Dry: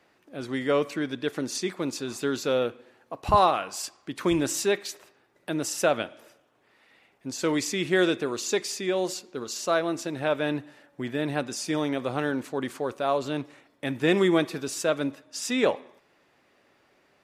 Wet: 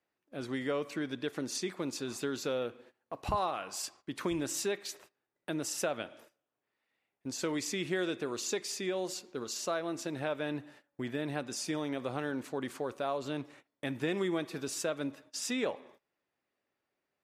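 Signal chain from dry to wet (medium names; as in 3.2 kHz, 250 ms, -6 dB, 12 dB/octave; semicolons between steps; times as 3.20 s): gate -50 dBFS, range -18 dB; compression 2.5:1, threshold -28 dBFS, peak gain reduction 9 dB; trim -4 dB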